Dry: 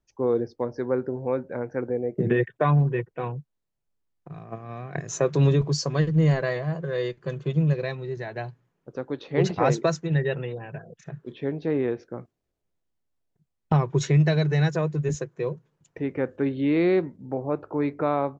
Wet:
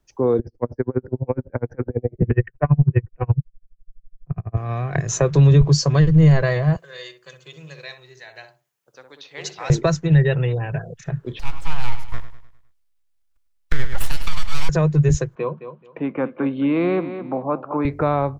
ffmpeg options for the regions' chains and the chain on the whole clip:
-filter_complex "[0:a]asettb=1/sr,asplit=3[a][b][c];[a]atrim=end=0.394[d];[b]atrim=start=0.39:end=4.57,asetpts=PTS-STARTPTS,afade=t=in:d=0.004:c=qsin,afade=t=out:st=4.176:d=0.004:c=qsin,asuperstop=centerf=3600:order=4:qfactor=2.7,aemphasis=mode=reproduction:type=bsi,aeval=exprs='val(0)*pow(10,-39*(0.5-0.5*cos(2*PI*12*n/s))/20)':c=same[e];[c]atrim=start=4.566[f];[d][e]acrossfade=d=0.004:c1=hsin:c2=qsin[g];[g][f]acrossfade=d=0.004:c1=qsin:c2=hsin,asettb=1/sr,asplit=3[h][i][j];[h]atrim=end=6.764[k];[i]atrim=start=6.76:end=9.7,asetpts=PTS-STARTPTS,afade=t=in:d=0.004:c=qsin,afade=t=out:st=2.936:d=0.004:c=qsin,aderivative,asplit=2[l][m];[m]adelay=62,lowpass=f=820:p=1,volume=-4dB,asplit=2[n][o];[o]adelay=62,lowpass=f=820:p=1,volume=0.32,asplit=2[p][q];[q]adelay=62,lowpass=f=820:p=1,volume=0.32,asplit=2[r][s];[s]adelay=62,lowpass=f=820:p=1,volume=0.32[t];[l][n][p][r][t]amix=inputs=5:normalize=0,atrim=end_sample=129654[u];[j]atrim=start=9.696[v];[k][u]acrossfade=d=0.004:c1=hsin:c2=qsin[w];[w][v]acrossfade=d=0.004:c1=qsin:c2=hsin,asettb=1/sr,asplit=3[x][y][z];[x]atrim=end=11.394[aa];[y]atrim=start=11.39:end=14.69,asetpts=PTS-STARTPTS,afade=t=in:d=0.004:c=qsin,afade=t=out:st=3.296:d=0.004:c=qsin,highpass=f=600:w=0.5412,highpass=f=600:w=1.3066,aeval=exprs='abs(val(0))':c=same,aecho=1:1:102|204|306|408|510:0.251|0.116|0.0532|0.0244|0.0112,atrim=end_sample=145530[ab];[z]atrim=start=14.686[ac];[aa][ab]acrossfade=d=0.004:c1=hsin:c2=qsin[ad];[ad][ac]acrossfade=d=0.004:c1=qsin:c2=hsin,asettb=1/sr,asplit=3[ae][af][ag];[ae]atrim=end=15.354[ah];[af]atrim=start=15.35:end=17.85,asetpts=PTS-STARTPTS,afade=t=in:d=0.004:c=qsin,afade=t=out:st=2.496:d=0.004:c=qsin,highpass=f=200:w=0.5412,highpass=f=200:w=1.3066,equalizer=f=220:t=q:w=4:g=7,equalizer=f=410:t=q:w=4:g=-8,equalizer=f=1.1k:t=q:w=4:g=8,equalizer=f=1.9k:t=q:w=4:g=-10,lowpass=f=3.1k:w=0.5412,lowpass=f=3.1k:w=1.3066,aecho=1:1:215|430:0.224|0.047,atrim=end_sample=110250[ai];[ag]atrim=start=17.846[aj];[ah][ai]acrossfade=d=0.004:c1=hsin:c2=qsin[ak];[ak][aj]acrossfade=d=0.004:c1=qsin:c2=hsin,asubboost=boost=8:cutoff=76,acrossover=split=190[al][am];[am]acompressor=threshold=-35dB:ratio=1.5[an];[al][an]amix=inputs=2:normalize=0,alimiter=level_in=15dB:limit=-1dB:release=50:level=0:latency=1,volume=-5dB"

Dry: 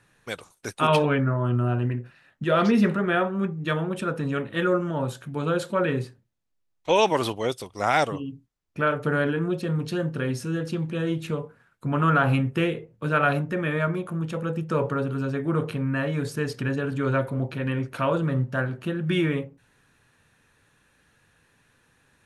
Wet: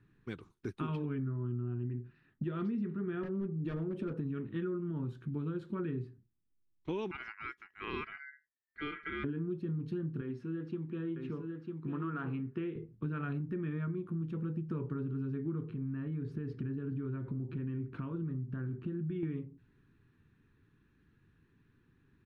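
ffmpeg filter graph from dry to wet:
-filter_complex "[0:a]asettb=1/sr,asplit=3[a][b][c];[a]atrim=end=3.234[d];[b]atrim=start=3.23:end=4.21,asetpts=PTS-STARTPTS,afade=t=in:d=0.004:c=qsin,afade=t=out:st=0.976:d=0.004:c=qsin,equalizer=f=580:w=2.2:g=15,acompressor=mode=upward:threshold=-22dB:ratio=2.5:attack=3.2:release=140:knee=2.83:detection=peak,volume=17.5dB,asoftclip=hard,volume=-17.5dB[e];[c]atrim=start=4.206[f];[d][e]acrossfade=d=0.004:c1=hsin:c2=qsin[g];[g][f]acrossfade=d=0.004:c1=qsin:c2=hsin,asettb=1/sr,asplit=3[h][i][j];[h]atrim=end=7.114[k];[i]atrim=start=7.11:end=9.24,asetpts=PTS-STARTPTS,afade=t=in:d=0.004:c=qsin,afade=t=out:st=2.126:d=0.004:c=qsin,lowpass=f=1k:p=1,aeval=exprs='val(0)*sin(2*PI*1800*n/s)':c=same[l];[j]atrim=start=9.236[m];[k][l]acrossfade=d=0.004:c1=hsin:c2=qsin[n];[n][m]acrossfade=d=0.004:c1=qsin:c2=hsin,asettb=1/sr,asplit=3[o][p][q];[o]atrim=end=10.214[r];[p]atrim=start=10.21:end=12.76,asetpts=PTS-STARTPTS,afade=t=in:d=0.004:c=qsin,afade=t=out:st=2.546:d=0.004:c=qsin,highpass=f=560:p=1,aemphasis=mode=reproduction:type=75fm,aecho=1:1:949:0.501,atrim=end_sample=112455[s];[q]atrim=start=12.756[t];[r][s]acrossfade=d=0.004:c1=hsin:c2=qsin[u];[u][t]acrossfade=d=0.004:c1=qsin:c2=hsin,asettb=1/sr,asplit=3[v][w][x];[v]atrim=end=15.684[y];[w]atrim=start=15.68:end=19.23,asetpts=PTS-STARTPTS,afade=t=in:d=0.004:c=qsin,afade=t=out:st=3.546:d=0.004:c=qsin,lowpass=f=2.6k:p=1,acompressor=threshold=-31dB:ratio=3:attack=3.2:release=140:knee=1:detection=peak[z];[x]atrim=start=19.226[aa];[y][z]acrossfade=d=0.004:c1=hsin:c2=qsin[ab];[ab][aa]acrossfade=d=0.004:c1=qsin:c2=hsin,firequalizer=gain_entry='entry(380,0);entry(550,-23);entry(1100,-12);entry(4000,-18);entry(7500,-29)':delay=0.05:min_phase=1,acompressor=threshold=-34dB:ratio=6"

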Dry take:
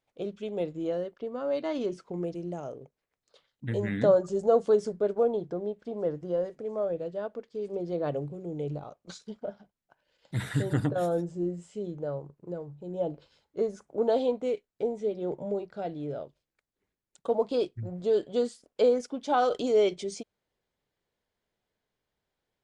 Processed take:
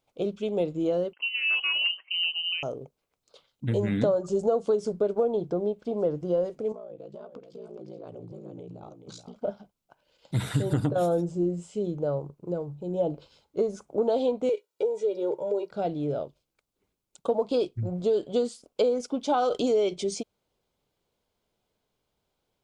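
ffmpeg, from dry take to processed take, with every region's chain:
-filter_complex "[0:a]asettb=1/sr,asplit=3[a][b][c];[a]atrim=end=1.134[d];[b]atrim=start=1.13:end=2.63,asetpts=PTS-STARTPTS,afade=t=in:d=0.004:c=qsin,afade=t=out:st=1.496:d=0.004:c=qsin,aeval=exprs='0.0668*(abs(mod(val(0)/0.0668+3,4)-2)-1)':c=same,lowpass=f=2.7k:t=q:w=0.5098,lowpass=f=2.7k:t=q:w=0.6013,lowpass=f=2.7k:t=q:w=0.9,lowpass=f=2.7k:t=q:w=2.563,afreqshift=-3200,highpass=340[e];[c]atrim=start=2.626[f];[d][e]acrossfade=d=0.004:c1=hsin:c2=qsin[g];[g][f]acrossfade=d=0.004:c1=qsin:c2=hsin,asettb=1/sr,asplit=3[h][i][j];[h]atrim=end=6.724[k];[i]atrim=start=6.72:end=9.36,asetpts=PTS-STARTPTS,afade=t=in:d=0.004:c=qsin,afade=t=out:st=2.636:d=0.004:c=qsin,acompressor=threshold=-43dB:ratio=8:attack=3.2:release=140:knee=1:detection=peak,aeval=exprs='val(0)*sin(2*PI*29*n/s)':c=same,aecho=1:1:425:0.376,atrim=end_sample=116424[l];[j]atrim=start=9.356[m];[k][l]acrossfade=d=0.004:c1=hsin:c2=qsin[n];[n][m]acrossfade=d=0.004:c1=qsin:c2=hsin,asettb=1/sr,asplit=3[o][p][q];[o]atrim=end=14.494[r];[p]atrim=start=14.49:end=15.71,asetpts=PTS-STARTPTS,afade=t=in:d=0.004:c=qsin,afade=t=out:st=1.216:d=0.004:c=qsin,highpass=330,aecho=1:1:2.1:0.7,atrim=end_sample=53802,acompressor=threshold=-33dB:ratio=1.5:attack=3.2:release=140:knee=1:detection=peak[s];[q]atrim=start=15.706[t];[r][s]acrossfade=d=0.004:c1=hsin:c2=qsin[u];[u][t]acrossfade=d=0.004:c1=qsin:c2=hsin,equalizer=f=1.8k:t=o:w=0.35:g=-11.5,acompressor=threshold=-27dB:ratio=6,volume=6dB"

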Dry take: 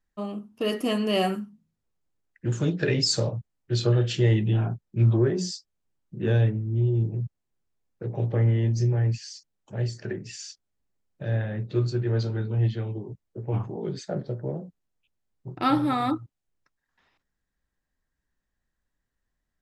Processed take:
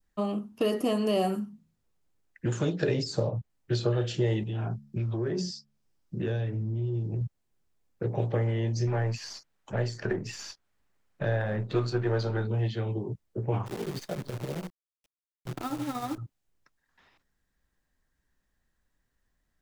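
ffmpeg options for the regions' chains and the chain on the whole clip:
-filter_complex "[0:a]asettb=1/sr,asplit=3[a][b][c];[a]atrim=end=4.434[d];[b]atrim=start=4.43:end=7.21,asetpts=PTS-STARTPTS,afade=t=in:d=0.004:c=qsin,afade=t=out:st=2.776:d=0.004:c=qsin,equalizer=f=5.2k:t=o:w=0.41:g=6,bandreject=f=71.17:t=h:w=4,bandreject=f=142.34:t=h:w=4,bandreject=f=213.51:t=h:w=4,acompressor=threshold=-30dB:ratio=4:attack=3.2:release=140:knee=1:detection=peak[e];[c]atrim=start=7.206[f];[d][e]acrossfade=d=0.004:c1=hsin:c2=qsin[g];[g][f]acrossfade=d=0.004:c1=qsin:c2=hsin,asettb=1/sr,asplit=3[h][i][j];[h]atrim=end=8.874[k];[i]atrim=start=8.87:end=12.47,asetpts=PTS-STARTPTS,afade=t=in:d=0.004:c=qsin,afade=t=out:st=3.596:d=0.004:c=qsin,aeval=exprs='if(lt(val(0),0),0.708*val(0),val(0))':c=same,equalizer=f=1.5k:t=o:w=2.3:g=9[l];[j]atrim=start=12.466[m];[k][l]acrossfade=d=0.004:c1=hsin:c2=qsin[n];[n][m]acrossfade=d=0.004:c1=qsin:c2=hsin,asettb=1/sr,asplit=3[o][p][q];[o]atrim=end=13.664[r];[p]atrim=start=13.66:end=16.18,asetpts=PTS-STARTPTS,afade=t=in:d=0.004:c=qsin,afade=t=out:st=2.516:d=0.004:c=qsin,acompressor=threshold=-31dB:ratio=8:attack=3.2:release=140:knee=1:detection=peak,tremolo=f=13:d=0.65,acrusher=bits=8:dc=4:mix=0:aa=0.000001[s];[q]atrim=start=16.176[t];[r][s]acrossfade=d=0.004:c1=hsin:c2=qsin[u];[u][t]acrossfade=d=0.004:c1=qsin:c2=hsin,adynamicequalizer=threshold=0.00631:dfrequency=1800:dqfactor=1.1:tfrequency=1800:tqfactor=1.1:attack=5:release=100:ratio=0.375:range=2.5:mode=cutabove:tftype=bell,acrossover=split=460|1200|4300[v][w][x][y];[v]acompressor=threshold=-33dB:ratio=4[z];[w]acompressor=threshold=-33dB:ratio=4[aa];[x]acompressor=threshold=-49dB:ratio=4[ab];[y]acompressor=threshold=-50dB:ratio=4[ac];[z][aa][ab][ac]amix=inputs=4:normalize=0,volume=4.5dB"

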